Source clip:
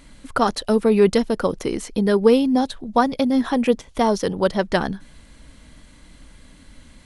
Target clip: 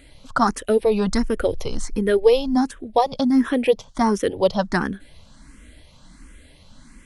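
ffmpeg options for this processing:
ffmpeg -i in.wav -filter_complex "[0:a]asplit=3[link_01][link_02][link_03];[link_01]afade=type=out:start_time=0.82:duration=0.02[link_04];[link_02]asubboost=boost=10:cutoff=71,afade=type=in:start_time=0.82:duration=0.02,afade=type=out:start_time=2.55:duration=0.02[link_05];[link_03]afade=type=in:start_time=2.55:duration=0.02[link_06];[link_04][link_05][link_06]amix=inputs=3:normalize=0,asplit=2[link_07][link_08];[link_08]afreqshift=1.4[link_09];[link_07][link_09]amix=inputs=2:normalize=1,volume=2.5dB" out.wav

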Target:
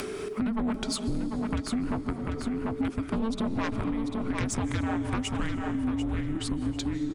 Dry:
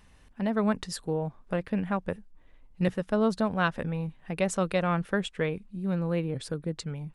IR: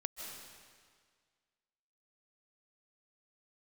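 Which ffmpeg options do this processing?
-filter_complex "[0:a]afreqshift=-450,acompressor=mode=upward:threshold=-43dB:ratio=2.5,asplit=2[link_01][link_02];[link_02]equalizer=frequency=100:width_type=o:width=1.1:gain=7[link_03];[1:a]atrim=start_sample=2205[link_04];[link_03][link_04]afir=irnorm=-1:irlink=0,volume=-7dB[link_05];[link_01][link_05]amix=inputs=2:normalize=0,aeval=exprs='0.335*sin(PI/2*2.82*val(0)/0.335)':channel_layout=same,aecho=1:1:743|1486|2229:0.422|0.101|0.0243,acompressor=threshold=-28dB:ratio=6"

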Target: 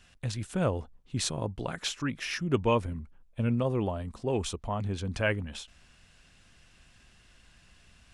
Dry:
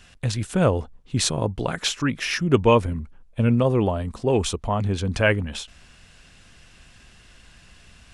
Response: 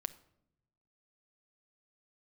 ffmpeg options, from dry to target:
-af "equalizer=frequency=450:width_type=o:width=0.23:gain=-2,volume=-8.5dB"

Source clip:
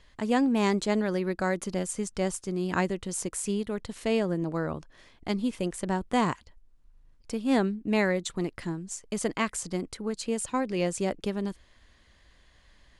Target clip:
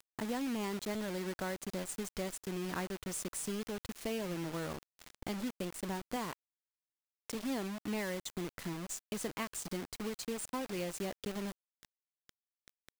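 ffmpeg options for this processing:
ffmpeg -i in.wav -filter_complex "[0:a]acompressor=threshold=-48dB:ratio=2.5,asettb=1/sr,asplit=3[link_01][link_02][link_03];[link_01]atrim=end=6.164[link_04];[link_02]atrim=start=6.16:end=7.35,asetpts=PTS-STARTPTS,afade=type=in:duration=0.004:curve=qsin,afade=type=out:start_time=1.186:duration=0.004:curve=qsin,highpass=frequency=190:poles=1[link_05];[link_03]atrim=start=7.346[link_06];[link_04][link_05]acrossfade=duration=0.004:curve1=hsin:curve2=qsin[link_07];[link_07][link_06]acrossfade=duration=0.004:curve1=qsin:curve2=hsin,acrusher=bits=7:mix=0:aa=0.000001,volume=4.5dB" out.wav

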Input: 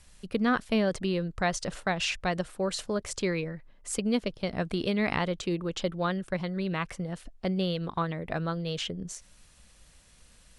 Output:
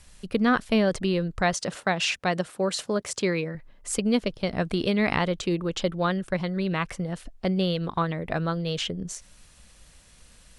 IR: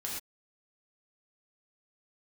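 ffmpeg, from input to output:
-filter_complex "[0:a]asettb=1/sr,asplit=3[link_01][link_02][link_03];[link_01]atrim=end=1.534[link_04];[link_02]atrim=start=1.53:end=3.55,asetpts=PTS-STARTPTS,afade=type=in:duration=0.004:curve=qsin,afade=type=out:start_time=2.016:duration=0.004:curve=qsin,highpass=130[link_05];[link_03]atrim=start=3.546[link_06];[link_04][link_05]acrossfade=duration=0.004:curve1=hsin:curve2=qsin[link_07];[link_07][link_06]acrossfade=duration=0.004:curve1=qsin:curve2=hsin,volume=4dB"

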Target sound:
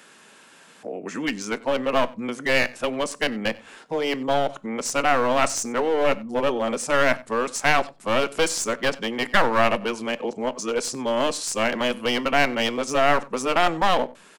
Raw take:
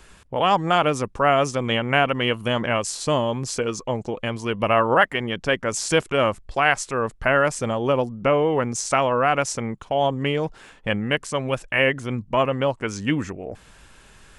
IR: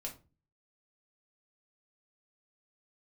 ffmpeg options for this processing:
-filter_complex "[0:a]areverse,highpass=frequency=200:width=0.5412,highpass=frequency=200:width=1.3066,acrossover=split=420[link_01][link_02];[link_01]alimiter=level_in=4.5dB:limit=-24dB:level=0:latency=1,volume=-4.5dB[link_03];[link_02]aeval=exprs='clip(val(0),-1,0.0562)':channel_layout=same[link_04];[link_03][link_04]amix=inputs=2:normalize=0,asplit=2[link_05][link_06];[link_06]adelay=93.29,volume=-22dB,highshelf=frequency=4000:gain=-2.1[link_07];[link_05][link_07]amix=inputs=2:normalize=0,asplit=2[link_08][link_09];[1:a]atrim=start_sample=2205[link_10];[link_09][link_10]afir=irnorm=-1:irlink=0,volume=-10.5dB[link_11];[link_08][link_11]amix=inputs=2:normalize=0"

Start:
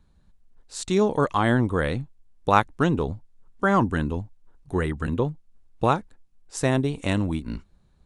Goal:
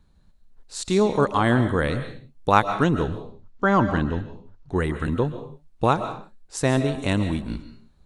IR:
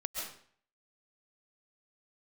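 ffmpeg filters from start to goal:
-filter_complex "[0:a]asettb=1/sr,asplit=3[link_01][link_02][link_03];[link_01]atrim=end=3.084[link_04];[link_02]atrim=start=3.08:end=4.76,asetpts=PTS-STARTPTS,afade=type=in:duration=0.004:curve=qsin,afade=type=out:start_time=1.676:duration=0.004:curve=qsin,lowpass=frequency=6400:width=0.5412,lowpass=frequency=6400:width=1.3066[link_05];[link_03]atrim=start=4.756[link_06];[link_04][link_05]acrossfade=duration=0.004:curve1=hsin:curve2=qsin[link_07];[link_07][link_06]acrossfade=duration=0.004:curve1=qsin:curve2=hsin,asplit=2[link_08][link_09];[link_09]equalizer=frequency=4200:width_type=o:width=0.26:gain=7.5[link_10];[1:a]atrim=start_sample=2205,afade=type=out:start_time=0.4:duration=0.01,atrim=end_sample=18081[link_11];[link_10][link_11]afir=irnorm=-1:irlink=0,volume=-7dB[link_12];[link_08][link_12]amix=inputs=2:normalize=0,volume=-1.5dB"

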